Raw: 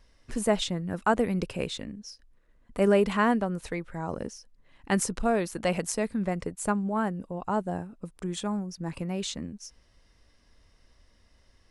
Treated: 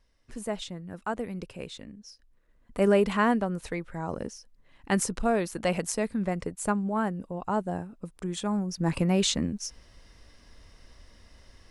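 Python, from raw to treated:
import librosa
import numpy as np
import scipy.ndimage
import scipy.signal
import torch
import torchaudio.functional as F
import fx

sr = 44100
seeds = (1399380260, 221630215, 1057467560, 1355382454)

y = fx.gain(x, sr, db=fx.line((1.58, -8.0), (2.79, 0.0), (8.4, 0.0), (8.89, 8.0)))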